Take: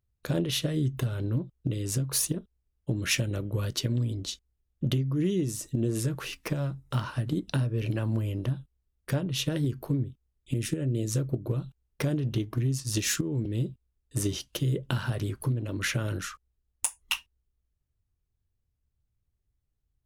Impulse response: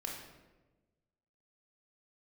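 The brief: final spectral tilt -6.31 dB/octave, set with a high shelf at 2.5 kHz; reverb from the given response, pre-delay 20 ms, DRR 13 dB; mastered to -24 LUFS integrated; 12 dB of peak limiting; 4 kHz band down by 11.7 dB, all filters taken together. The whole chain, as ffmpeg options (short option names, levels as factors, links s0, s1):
-filter_complex "[0:a]highshelf=f=2500:g=-9,equalizer=f=4000:t=o:g=-8,alimiter=level_in=1.33:limit=0.0631:level=0:latency=1,volume=0.75,asplit=2[s0][s1];[1:a]atrim=start_sample=2205,adelay=20[s2];[s1][s2]afir=irnorm=-1:irlink=0,volume=0.224[s3];[s0][s3]amix=inputs=2:normalize=0,volume=3.98"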